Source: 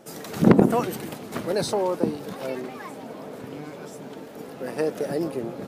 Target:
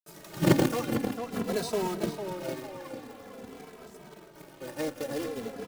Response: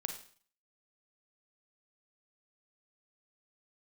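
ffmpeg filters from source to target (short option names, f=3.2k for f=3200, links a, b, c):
-filter_complex "[0:a]asettb=1/sr,asplit=3[a][b][c];[a]atrim=end=2.654[d];[b]atrim=start=2.65:end=4.88,asetpts=PTS-STARTPTS,afade=t=in:d=0.004:c=qsin,afade=t=out:st=2.226:d=0.004:c=qsin,highpass=f=73:w=0.5412,highpass=f=73:w=1.3066[e];[c]atrim=start=4.876[f];[d][e]acrossfade=d=0.004:c1=hsin:c2=qsin[g];[g][f]acrossfade=d=0.004:c1=qsin:c2=hsin,aeval=exprs='sgn(val(0))*max(abs(val(0))-0.00891,0)':c=same,acrusher=bits=2:mode=log:mix=0:aa=0.000001,asplit=2[h][i];[i]adelay=450,lowpass=f=3.9k:p=1,volume=-8dB,asplit=2[j][k];[k]adelay=450,lowpass=f=3.9k:p=1,volume=0.5,asplit=2[l][m];[m]adelay=450,lowpass=f=3.9k:p=1,volume=0.5,asplit=2[n][o];[o]adelay=450,lowpass=f=3.9k:p=1,volume=0.5,asplit=2[p][q];[q]adelay=450,lowpass=f=3.9k:p=1,volume=0.5,asplit=2[r][s];[s]adelay=450,lowpass=f=3.9k:p=1,volume=0.5[t];[h][j][l][n][p][r][t]amix=inputs=7:normalize=0,asplit=2[u][v];[v]adelay=2.7,afreqshift=-0.48[w];[u][w]amix=inputs=2:normalize=1,volume=-3dB"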